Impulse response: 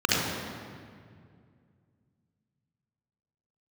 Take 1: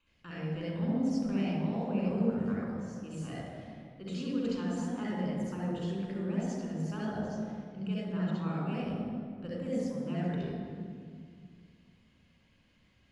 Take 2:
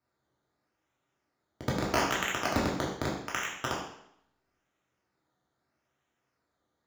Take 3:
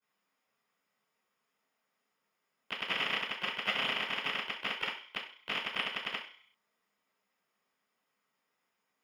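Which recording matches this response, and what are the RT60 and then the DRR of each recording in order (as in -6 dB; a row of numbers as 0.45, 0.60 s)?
1; 2.2, 0.70, 0.50 s; -5.0, -4.5, -12.5 dB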